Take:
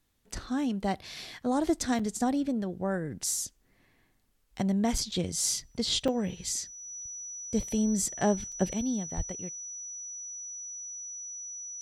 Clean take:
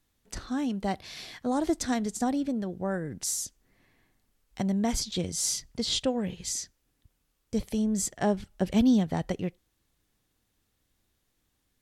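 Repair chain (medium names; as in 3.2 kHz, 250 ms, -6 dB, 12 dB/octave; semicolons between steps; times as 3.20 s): band-stop 5.9 kHz, Q 30; 9.16–9.28 s: high-pass 140 Hz 24 dB/octave; interpolate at 1.99/4.98/6.08/8.52 s, 4.8 ms; trim 0 dB, from 8.73 s +9.5 dB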